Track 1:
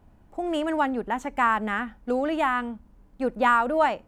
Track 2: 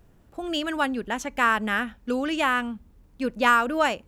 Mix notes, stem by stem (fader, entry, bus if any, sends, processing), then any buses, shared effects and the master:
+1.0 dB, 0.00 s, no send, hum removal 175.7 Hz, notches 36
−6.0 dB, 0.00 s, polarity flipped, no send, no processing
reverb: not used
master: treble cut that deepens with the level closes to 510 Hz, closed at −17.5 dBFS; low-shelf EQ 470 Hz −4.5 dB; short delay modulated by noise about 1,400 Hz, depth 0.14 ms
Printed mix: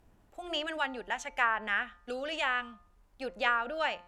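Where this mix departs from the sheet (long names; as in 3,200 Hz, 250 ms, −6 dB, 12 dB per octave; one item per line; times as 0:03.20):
stem 1 +1.0 dB → −7.0 dB
master: missing short delay modulated by noise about 1,400 Hz, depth 0.14 ms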